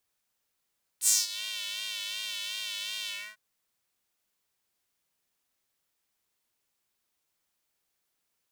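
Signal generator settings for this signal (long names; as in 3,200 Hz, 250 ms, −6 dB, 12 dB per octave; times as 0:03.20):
subtractive patch with vibrato G#3, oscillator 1 square, oscillator 2 saw, interval 0 semitones, oscillator 2 level −16 dB, filter highpass, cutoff 1,600 Hz, filter envelope 2.5 octaves, filter decay 0.38 s, attack 66 ms, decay 0.19 s, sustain −19.5 dB, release 0.28 s, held 2.07 s, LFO 2.7 Hz, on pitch 52 cents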